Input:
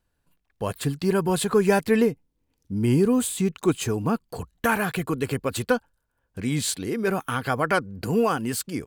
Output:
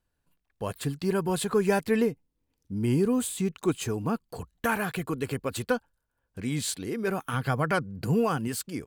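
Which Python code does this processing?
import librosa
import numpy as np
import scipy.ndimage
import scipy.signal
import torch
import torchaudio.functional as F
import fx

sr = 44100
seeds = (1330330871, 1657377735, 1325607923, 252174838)

y = fx.peak_eq(x, sr, hz=140.0, db=9.0, octaves=0.76, at=(7.33, 8.48))
y = y * 10.0 ** (-4.5 / 20.0)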